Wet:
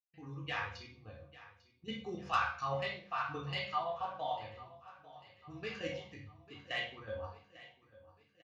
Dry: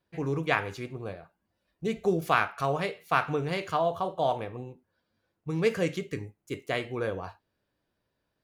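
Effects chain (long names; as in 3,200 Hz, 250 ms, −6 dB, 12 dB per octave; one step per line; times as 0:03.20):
spectral dynamics exaggerated over time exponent 1.5
low-pass filter 5,200 Hz 24 dB per octave
noise gate with hold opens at −53 dBFS
high-pass filter 1,400 Hz 6 dB per octave
high-shelf EQ 3,100 Hz −6.5 dB
output level in coarse steps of 14 dB
soft clipping −27 dBFS, distortion −15 dB
repeating echo 847 ms, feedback 51%, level −18 dB
convolution reverb RT60 0.40 s, pre-delay 3 ms, DRR −3 dB
level +1 dB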